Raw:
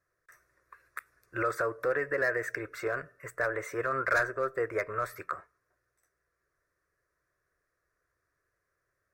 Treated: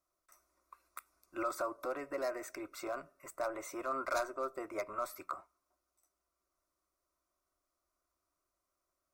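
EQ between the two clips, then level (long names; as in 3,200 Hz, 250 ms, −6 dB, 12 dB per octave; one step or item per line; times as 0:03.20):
low-shelf EQ 260 Hz −5 dB
phaser with its sweep stopped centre 460 Hz, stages 6
+1.0 dB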